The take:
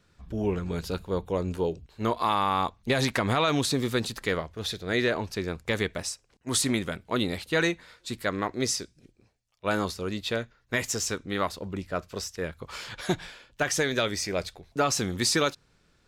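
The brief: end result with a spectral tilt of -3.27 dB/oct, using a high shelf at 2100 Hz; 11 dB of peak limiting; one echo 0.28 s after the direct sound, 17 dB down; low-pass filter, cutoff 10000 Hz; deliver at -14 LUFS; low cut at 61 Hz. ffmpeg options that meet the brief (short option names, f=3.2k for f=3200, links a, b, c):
-af "highpass=61,lowpass=10k,highshelf=f=2.1k:g=5,alimiter=limit=-19.5dB:level=0:latency=1,aecho=1:1:280:0.141,volume=17.5dB"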